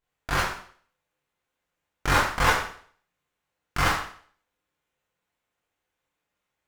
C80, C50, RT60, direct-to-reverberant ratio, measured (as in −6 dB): 7.0 dB, 4.0 dB, 0.50 s, −9.0 dB